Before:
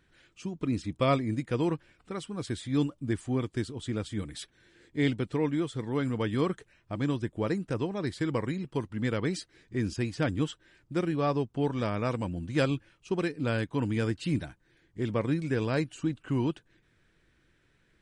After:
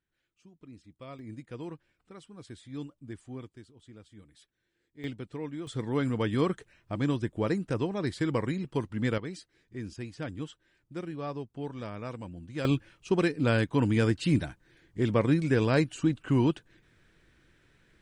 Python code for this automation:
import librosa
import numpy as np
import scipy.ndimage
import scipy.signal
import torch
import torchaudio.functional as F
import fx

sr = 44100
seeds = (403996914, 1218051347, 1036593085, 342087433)

y = fx.gain(x, sr, db=fx.steps((0.0, -20.0), (1.19, -12.0), (3.53, -18.5), (5.04, -9.0), (5.67, 1.0), (9.18, -8.5), (12.65, 4.0)))